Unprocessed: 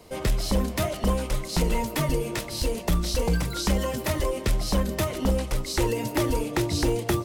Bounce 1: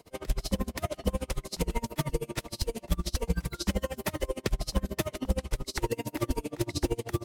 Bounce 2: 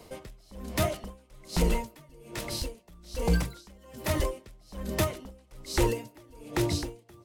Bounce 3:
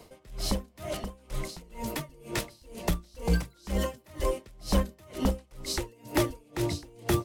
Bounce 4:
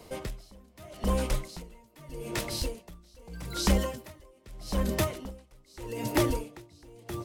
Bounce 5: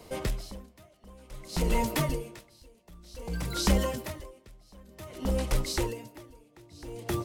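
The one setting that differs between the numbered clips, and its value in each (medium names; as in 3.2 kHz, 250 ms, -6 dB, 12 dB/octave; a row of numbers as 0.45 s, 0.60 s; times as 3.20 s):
logarithmic tremolo, rate: 13 Hz, 1.2 Hz, 2.1 Hz, 0.81 Hz, 0.54 Hz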